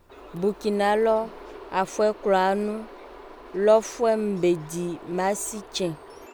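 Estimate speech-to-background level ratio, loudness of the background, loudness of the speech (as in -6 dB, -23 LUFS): 19.5 dB, -44.0 LUFS, -24.5 LUFS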